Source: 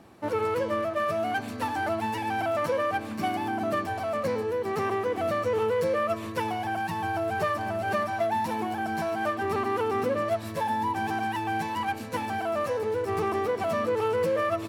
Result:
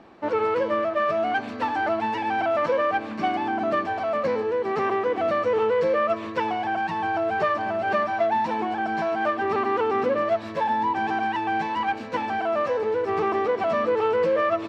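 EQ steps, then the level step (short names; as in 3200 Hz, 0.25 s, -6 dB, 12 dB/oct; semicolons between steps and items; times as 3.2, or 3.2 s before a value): air absorption 170 m; bell 96 Hz -12.5 dB 1.7 oct; +5.5 dB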